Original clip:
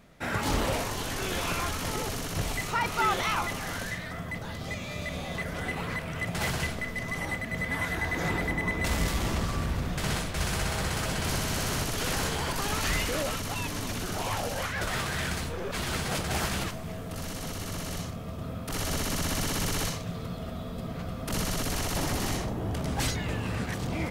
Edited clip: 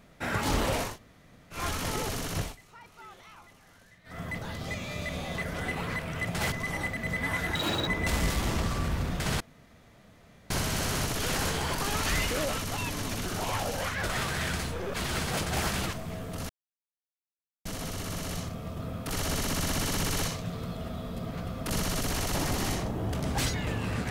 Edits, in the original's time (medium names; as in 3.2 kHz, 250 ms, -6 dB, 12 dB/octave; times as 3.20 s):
0.91–1.58 s: room tone, crossfade 0.16 s
2.37–4.23 s: dip -23 dB, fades 0.19 s
6.52–7.00 s: delete
8.03–8.65 s: speed 192%
10.18–11.28 s: room tone
17.27 s: insert silence 1.16 s